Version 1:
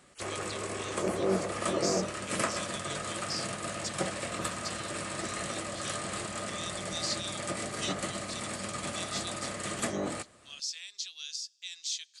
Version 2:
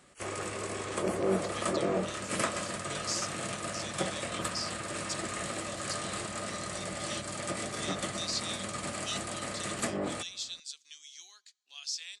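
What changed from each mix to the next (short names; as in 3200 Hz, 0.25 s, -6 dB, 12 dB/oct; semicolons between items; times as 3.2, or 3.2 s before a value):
speech: entry +1.25 s; background: send off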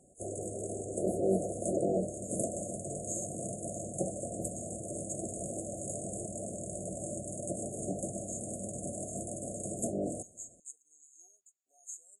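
master: add brick-wall FIR band-stop 760–6400 Hz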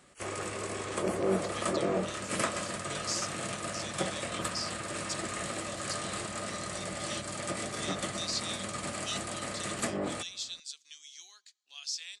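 master: remove brick-wall FIR band-stop 760–6400 Hz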